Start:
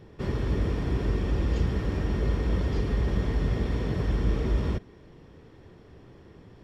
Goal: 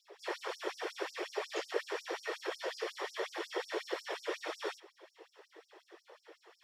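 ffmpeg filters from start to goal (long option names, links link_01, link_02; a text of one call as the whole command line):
ffmpeg -i in.wav -af "flanger=delay=16:depth=7.2:speed=0.83,afftfilt=real='hypot(re,im)*cos(2*PI*random(0))':imag='hypot(re,im)*sin(2*PI*random(1))':win_size=512:overlap=0.75,afftfilt=real='re*gte(b*sr/1024,310*pow(4900/310,0.5+0.5*sin(2*PI*5.5*pts/sr)))':imag='im*gte(b*sr/1024,310*pow(4900/310,0.5+0.5*sin(2*PI*5.5*pts/sr)))':win_size=1024:overlap=0.75,volume=11.5dB" out.wav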